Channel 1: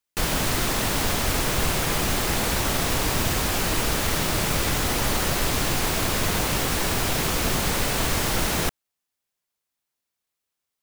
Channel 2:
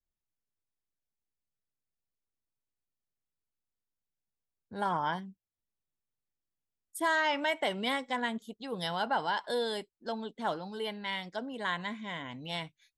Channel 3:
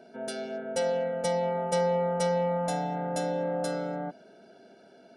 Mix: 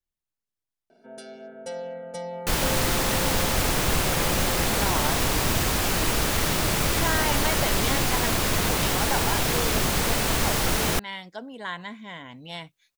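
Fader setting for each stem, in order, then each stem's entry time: 0.0, 0.0, -6.5 dB; 2.30, 0.00, 0.90 s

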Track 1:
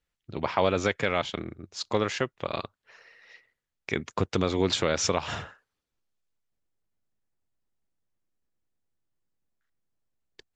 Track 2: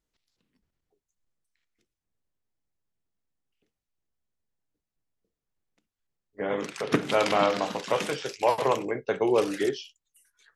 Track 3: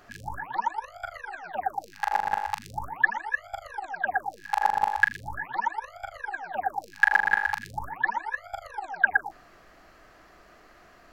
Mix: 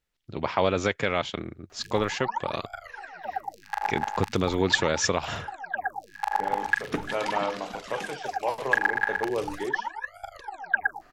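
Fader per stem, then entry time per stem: +0.5, -6.0, -3.0 dB; 0.00, 0.00, 1.70 s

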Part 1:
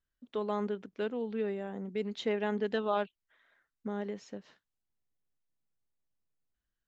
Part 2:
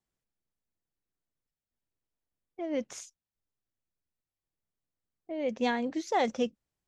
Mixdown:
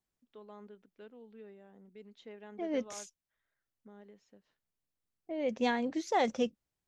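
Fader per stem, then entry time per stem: -18.0, -1.5 dB; 0.00, 0.00 s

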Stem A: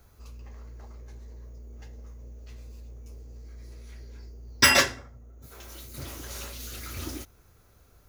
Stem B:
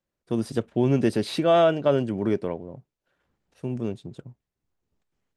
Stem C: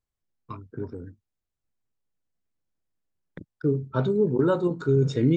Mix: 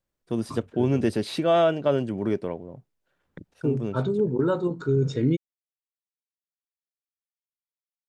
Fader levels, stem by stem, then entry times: off, -1.5 dB, -1.5 dB; off, 0.00 s, 0.00 s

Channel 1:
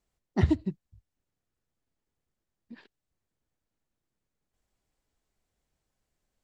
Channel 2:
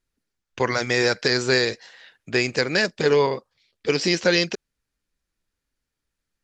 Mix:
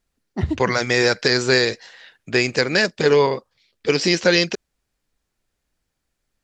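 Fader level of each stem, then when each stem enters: +1.0, +3.0 dB; 0.00, 0.00 s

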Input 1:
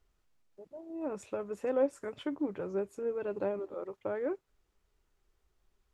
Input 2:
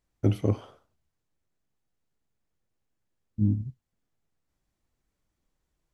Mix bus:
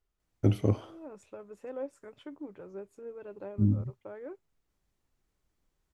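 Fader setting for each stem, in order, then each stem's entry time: -9.0, -1.0 dB; 0.00, 0.20 s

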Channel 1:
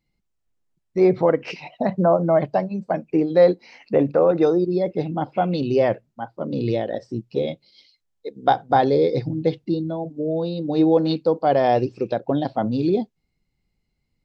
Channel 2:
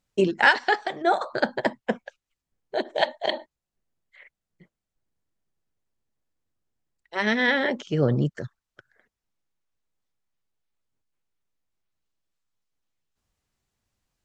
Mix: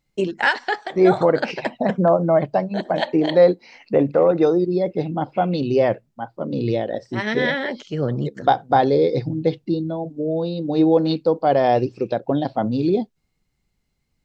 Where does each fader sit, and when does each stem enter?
+1.0, -1.0 dB; 0.00, 0.00 s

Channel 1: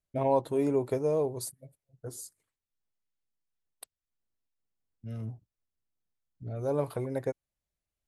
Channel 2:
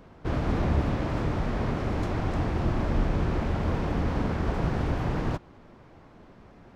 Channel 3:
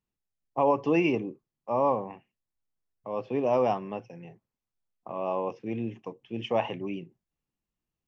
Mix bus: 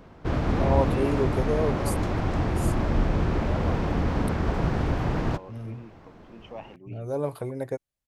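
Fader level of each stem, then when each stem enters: +1.0, +2.0, -13.5 dB; 0.45, 0.00, 0.00 s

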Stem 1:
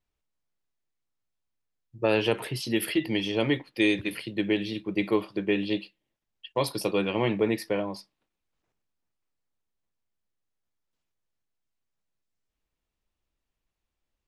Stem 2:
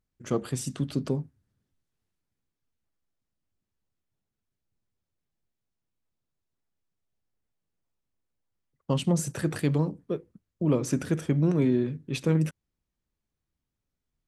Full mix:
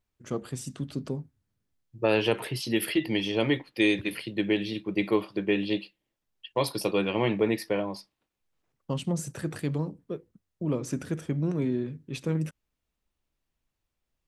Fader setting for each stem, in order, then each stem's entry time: 0.0, -4.5 dB; 0.00, 0.00 s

